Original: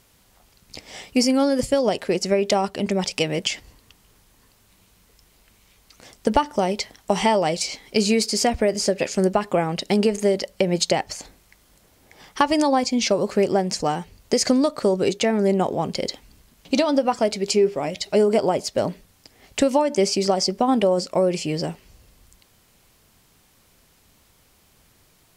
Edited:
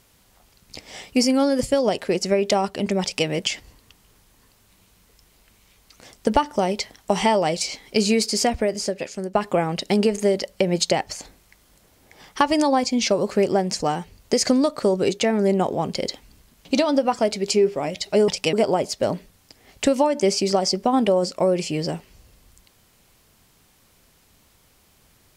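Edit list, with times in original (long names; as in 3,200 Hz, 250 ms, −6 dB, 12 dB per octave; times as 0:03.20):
0:03.02–0:03.27: duplicate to 0:18.28
0:08.40–0:09.35: fade out, to −13 dB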